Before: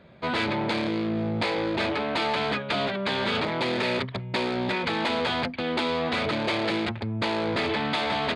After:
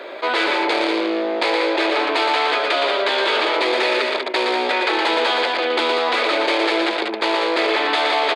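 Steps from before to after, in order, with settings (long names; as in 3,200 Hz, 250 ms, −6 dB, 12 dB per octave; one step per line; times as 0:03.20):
Butterworth high-pass 320 Hz 48 dB per octave
multi-tap delay 69/117/191 ms −18/−5/−8 dB
envelope flattener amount 50%
level +6 dB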